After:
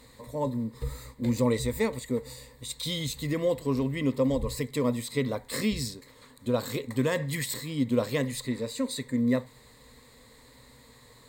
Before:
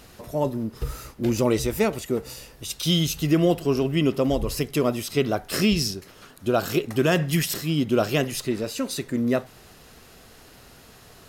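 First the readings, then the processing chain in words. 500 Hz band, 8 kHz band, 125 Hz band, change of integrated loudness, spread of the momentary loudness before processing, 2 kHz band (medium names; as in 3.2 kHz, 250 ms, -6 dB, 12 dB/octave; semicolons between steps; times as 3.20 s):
-5.5 dB, -5.5 dB, -5.5 dB, -5.5 dB, 9 LU, -6.0 dB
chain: rippled EQ curve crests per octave 1, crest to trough 14 dB; trim -7.5 dB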